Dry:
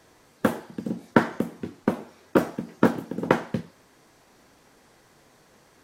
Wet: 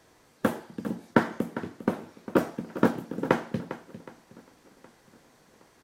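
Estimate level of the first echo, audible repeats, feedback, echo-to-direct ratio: −14.0 dB, 3, repeats not evenly spaced, −13.5 dB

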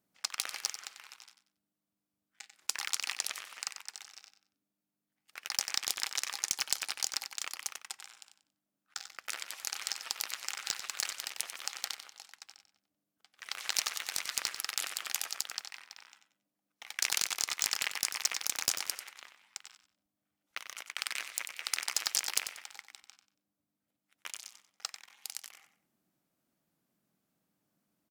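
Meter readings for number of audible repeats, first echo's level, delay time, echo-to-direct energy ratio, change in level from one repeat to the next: 3, −10.0 dB, 93 ms, −9.5 dB, −11.5 dB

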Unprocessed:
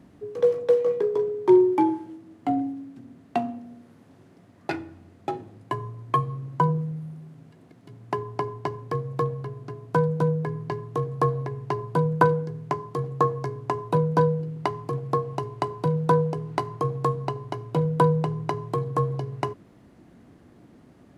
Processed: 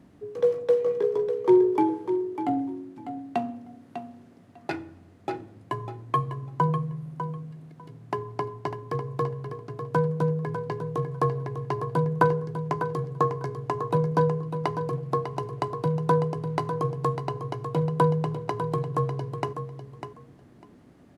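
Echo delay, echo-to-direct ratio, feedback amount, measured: 599 ms, −9.0 dB, 16%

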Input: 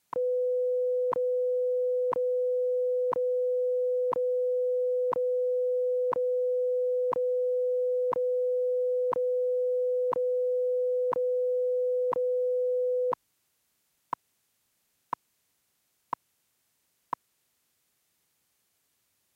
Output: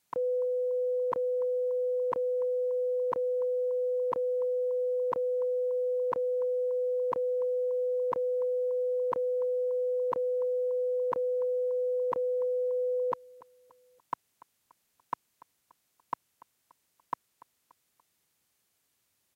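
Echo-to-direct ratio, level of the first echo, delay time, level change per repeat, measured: −20.0 dB, −21.0 dB, 289 ms, −7.0 dB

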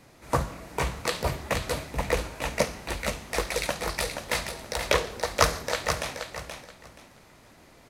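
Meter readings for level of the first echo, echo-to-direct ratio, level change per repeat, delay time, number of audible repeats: −7.0 dB, −7.0 dB, −13.0 dB, 477 ms, 3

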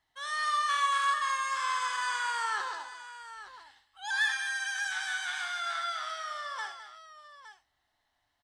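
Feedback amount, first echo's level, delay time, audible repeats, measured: repeats not evenly spaced, −8.0 dB, 61 ms, 3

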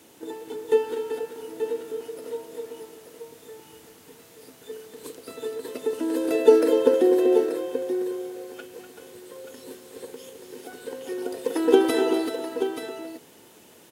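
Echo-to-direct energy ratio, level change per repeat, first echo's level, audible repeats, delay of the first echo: −4.5 dB, repeats not evenly spaced, −10.0 dB, 3, 246 ms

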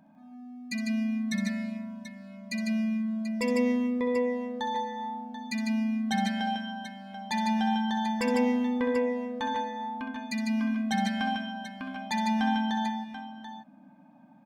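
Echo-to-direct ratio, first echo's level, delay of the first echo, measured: −2.0 dB, −8.0 dB, 65 ms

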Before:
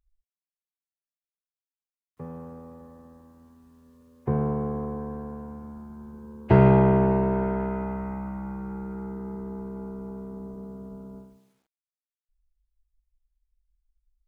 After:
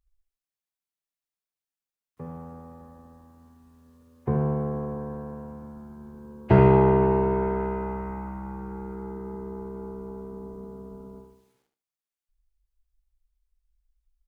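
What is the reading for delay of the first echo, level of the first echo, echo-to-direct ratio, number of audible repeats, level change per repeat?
74 ms, −8.0 dB, −7.5 dB, 2, −12.5 dB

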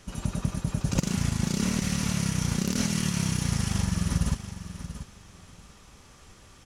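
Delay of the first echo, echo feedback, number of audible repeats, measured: 687 ms, 18%, 2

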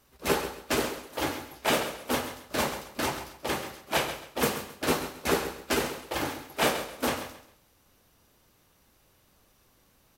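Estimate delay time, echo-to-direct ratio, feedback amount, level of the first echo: 134 ms, −10.5 dB, 28%, −11.0 dB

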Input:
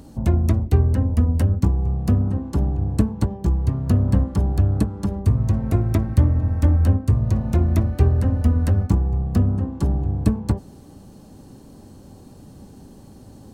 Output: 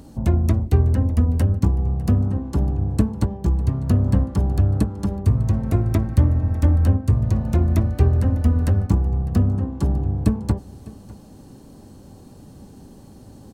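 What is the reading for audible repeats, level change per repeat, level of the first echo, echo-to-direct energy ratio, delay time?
1, repeats not evenly spaced, −20.0 dB, −20.0 dB, 602 ms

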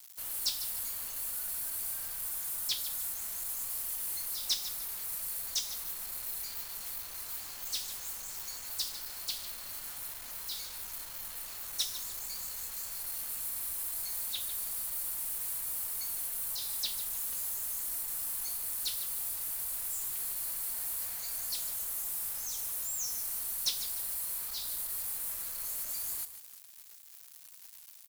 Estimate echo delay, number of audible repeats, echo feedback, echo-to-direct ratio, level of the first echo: 149 ms, 2, 30%, −12.0 dB, −12.5 dB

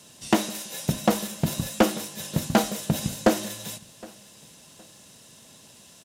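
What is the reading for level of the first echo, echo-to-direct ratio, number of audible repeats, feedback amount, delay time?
−23.5 dB, −23.0 dB, 2, 29%, 765 ms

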